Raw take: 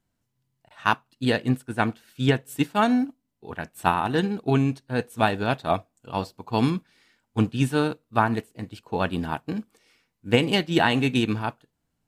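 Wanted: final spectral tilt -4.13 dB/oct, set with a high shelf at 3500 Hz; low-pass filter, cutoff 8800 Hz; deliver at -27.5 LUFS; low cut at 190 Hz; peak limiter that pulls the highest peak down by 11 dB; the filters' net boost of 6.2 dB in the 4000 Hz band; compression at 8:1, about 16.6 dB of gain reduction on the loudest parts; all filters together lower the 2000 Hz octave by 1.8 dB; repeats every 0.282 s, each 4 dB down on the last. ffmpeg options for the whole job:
-af "highpass=190,lowpass=8.8k,equalizer=f=2k:t=o:g=-7.5,highshelf=f=3.5k:g=8.5,equalizer=f=4k:t=o:g=6.5,acompressor=threshold=-33dB:ratio=8,alimiter=level_in=2dB:limit=-24dB:level=0:latency=1,volume=-2dB,aecho=1:1:282|564|846|1128|1410|1692|1974|2256|2538:0.631|0.398|0.25|0.158|0.0994|0.0626|0.0394|0.0249|0.0157,volume=11dB"

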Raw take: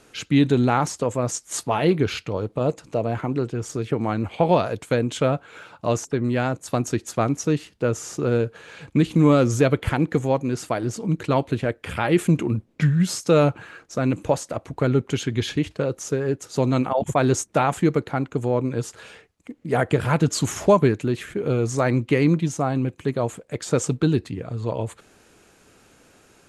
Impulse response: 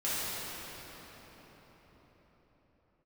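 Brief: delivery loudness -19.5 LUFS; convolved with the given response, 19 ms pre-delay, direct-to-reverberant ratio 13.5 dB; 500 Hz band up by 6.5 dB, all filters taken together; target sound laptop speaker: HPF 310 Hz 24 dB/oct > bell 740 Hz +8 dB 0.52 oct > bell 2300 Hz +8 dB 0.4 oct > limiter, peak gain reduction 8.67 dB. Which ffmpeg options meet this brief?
-filter_complex "[0:a]equalizer=f=500:t=o:g=5.5,asplit=2[a][b];[1:a]atrim=start_sample=2205,adelay=19[c];[b][c]afir=irnorm=-1:irlink=0,volume=-22.5dB[d];[a][d]amix=inputs=2:normalize=0,highpass=f=310:w=0.5412,highpass=f=310:w=1.3066,equalizer=f=740:t=o:w=0.52:g=8,equalizer=f=2.3k:t=o:w=0.4:g=8,volume=1.5dB,alimiter=limit=-6dB:level=0:latency=1"

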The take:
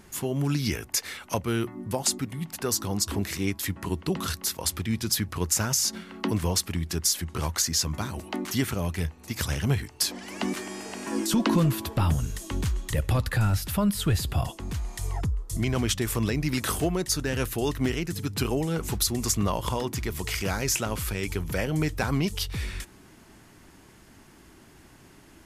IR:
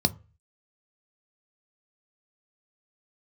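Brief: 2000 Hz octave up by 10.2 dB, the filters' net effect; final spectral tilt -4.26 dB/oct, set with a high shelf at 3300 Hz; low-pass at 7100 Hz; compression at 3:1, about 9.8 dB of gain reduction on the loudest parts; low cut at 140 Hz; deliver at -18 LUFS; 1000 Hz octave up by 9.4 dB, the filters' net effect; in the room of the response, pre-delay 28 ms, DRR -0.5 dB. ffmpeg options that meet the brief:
-filter_complex "[0:a]highpass=140,lowpass=7.1k,equalizer=f=1k:t=o:g=8.5,equalizer=f=2k:t=o:g=7.5,highshelf=f=3.3k:g=8.5,acompressor=threshold=-27dB:ratio=3,asplit=2[a][b];[1:a]atrim=start_sample=2205,adelay=28[c];[b][c]afir=irnorm=-1:irlink=0,volume=-9dB[d];[a][d]amix=inputs=2:normalize=0,volume=6dB"

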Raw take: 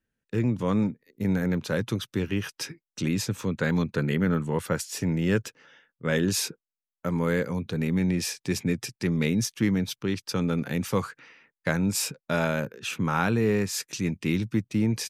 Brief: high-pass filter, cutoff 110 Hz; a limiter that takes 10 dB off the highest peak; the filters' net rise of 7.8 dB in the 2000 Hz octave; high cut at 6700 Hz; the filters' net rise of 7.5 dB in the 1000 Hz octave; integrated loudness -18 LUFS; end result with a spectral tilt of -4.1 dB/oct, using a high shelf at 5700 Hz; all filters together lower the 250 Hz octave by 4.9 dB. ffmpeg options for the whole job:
-af "highpass=110,lowpass=6.7k,equalizer=f=250:t=o:g=-7,equalizer=f=1k:t=o:g=7.5,equalizer=f=2k:t=o:g=7,highshelf=f=5.7k:g=4.5,volume=10.5dB,alimiter=limit=-3.5dB:level=0:latency=1"

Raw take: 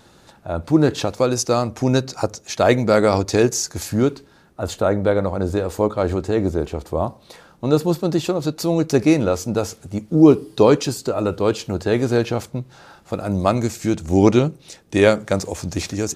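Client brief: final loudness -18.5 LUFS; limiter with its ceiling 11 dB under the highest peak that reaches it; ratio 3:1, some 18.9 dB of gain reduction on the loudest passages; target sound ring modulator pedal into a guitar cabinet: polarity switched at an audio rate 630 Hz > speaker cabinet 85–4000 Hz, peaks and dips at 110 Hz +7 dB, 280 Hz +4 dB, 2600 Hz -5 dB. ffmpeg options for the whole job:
-af "acompressor=threshold=-33dB:ratio=3,alimiter=level_in=2.5dB:limit=-24dB:level=0:latency=1,volume=-2.5dB,aeval=exprs='val(0)*sgn(sin(2*PI*630*n/s))':c=same,highpass=85,equalizer=f=110:t=q:w=4:g=7,equalizer=f=280:t=q:w=4:g=4,equalizer=f=2.6k:t=q:w=4:g=-5,lowpass=f=4k:w=0.5412,lowpass=f=4k:w=1.3066,volume=19dB"

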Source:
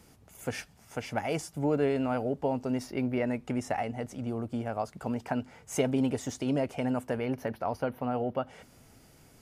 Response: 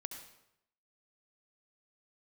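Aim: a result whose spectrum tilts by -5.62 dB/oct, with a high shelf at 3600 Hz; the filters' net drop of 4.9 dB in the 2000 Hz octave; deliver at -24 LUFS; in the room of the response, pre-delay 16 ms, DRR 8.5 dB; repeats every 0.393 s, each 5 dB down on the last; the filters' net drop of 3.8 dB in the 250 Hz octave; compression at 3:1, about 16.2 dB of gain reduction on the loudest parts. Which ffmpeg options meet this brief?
-filter_complex "[0:a]equalizer=f=250:t=o:g=-4,equalizer=f=2k:t=o:g=-4.5,highshelf=f=3.6k:g=-6,acompressor=threshold=-47dB:ratio=3,aecho=1:1:393|786|1179|1572|1965|2358|2751:0.562|0.315|0.176|0.0988|0.0553|0.031|0.0173,asplit=2[a][b];[1:a]atrim=start_sample=2205,adelay=16[c];[b][c]afir=irnorm=-1:irlink=0,volume=-6dB[d];[a][d]amix=inputs=2:normalize=0,volume=21dB"

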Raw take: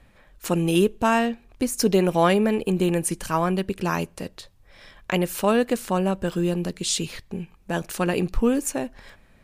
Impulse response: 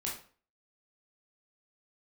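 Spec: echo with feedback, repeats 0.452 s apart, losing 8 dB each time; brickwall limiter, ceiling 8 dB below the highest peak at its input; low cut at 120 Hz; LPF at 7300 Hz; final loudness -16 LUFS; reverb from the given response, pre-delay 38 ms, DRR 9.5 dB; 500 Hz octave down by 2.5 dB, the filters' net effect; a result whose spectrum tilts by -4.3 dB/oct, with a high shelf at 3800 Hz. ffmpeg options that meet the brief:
-filter_complex "[0:a]highpass=120,lowpass=7.3k,equalizer=f=500:t=o:g=-3.5,highshelf=f=3.8k:g=8,alimiter=limit=-15dB:level=0:latency=1,aecho=1:1:452|904|1356|1808|2260:0.398|0.159|0.0637|0.0255|0.0102,asplit=2[a][b];[1:a]atrim=start_sample=2205,adelay=38[c];[b][c]afir=irnorm=-1:irlink=0,volume=-11.5dB[d];[a][d]amix=inputs=2:normalize=0,volume=10dB"

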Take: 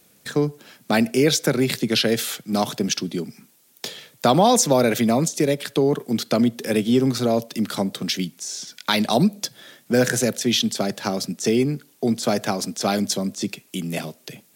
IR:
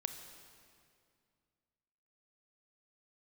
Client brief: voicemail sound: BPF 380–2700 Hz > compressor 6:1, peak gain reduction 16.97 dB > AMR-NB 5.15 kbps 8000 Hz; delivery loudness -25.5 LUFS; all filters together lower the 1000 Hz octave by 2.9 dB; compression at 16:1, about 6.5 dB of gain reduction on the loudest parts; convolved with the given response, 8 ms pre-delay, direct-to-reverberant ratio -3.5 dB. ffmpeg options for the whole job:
-filter_complex "[0:a]equalizer=f=1k:t=o:g=-4,acompressor=threshold=-19dB:ratio=16,asplit=2[a][b];[1:a]atrim=start_sample=2205,adelay=8[c];[b][c]afir=irnorm=-1:irlink=0,volume=4dB[d];[a][d]amix=inputs=2:normalize=0,highpass=380,lowpass=2.7k,acompressor=threshold=-33dB:ratio=6,volume=14dB" -ar 8000 -c:a libopencore_amrnb -b:a 5150

